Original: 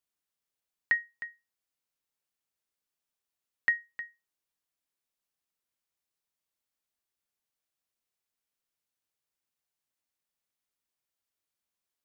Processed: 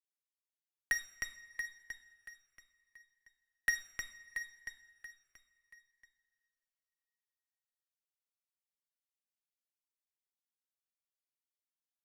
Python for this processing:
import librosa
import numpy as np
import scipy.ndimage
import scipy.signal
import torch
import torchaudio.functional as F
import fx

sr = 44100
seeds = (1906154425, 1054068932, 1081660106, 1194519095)

p1 = fx.low_shelf(x, sr, hz=460.0, db=-11.5)
p2 = fx.over_compress(p1, sr, threshold_db=-34.0, ratio=-1.0)
p3 = p1 + (p2 * librosa.db_to_amplitude(3.0))
p4 = 10.0 ** (-22.5 / 20.0) * np.tanh(p3 / 10.0 ** (-22.5 / 20.0))
p5 = fx.cheby_harmonics(p4, sr, harmonics=(3, 4, 5, 8), levels_db=(-8, -29, -26, -30), full_scale_db=-22.5)
p6 = fx.echo_feedback(p5, sr, ms=681, feedback_pct=31, wet_db=-10.5)
p7 = fx.rev_double_slope(p6, sr, seeds[0], early_s=0.57, late_s=3.4, knee_db=-18, drr_db=9.5)
p8 = fx.notch_cascade(p7, sr, direction='falling', hz=0.71)
y = p8 * librosa.db_to_amplitude(2.0)